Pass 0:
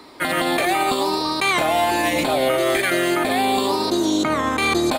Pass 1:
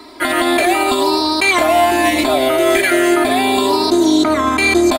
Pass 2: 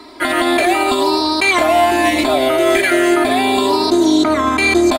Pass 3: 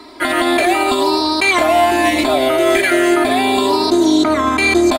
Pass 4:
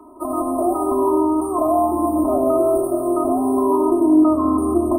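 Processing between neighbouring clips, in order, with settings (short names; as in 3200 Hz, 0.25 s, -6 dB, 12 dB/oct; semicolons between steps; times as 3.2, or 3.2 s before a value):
comb 3 ms, depth 91%; gain +2.5 dB
high shelf 11000 Hz -7 dB
nothing audible
brick-wall FIR band-stop 1300–8200 Hz; shoebox room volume 3400 m³, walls furnished, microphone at 2.9 m; gain -8 dB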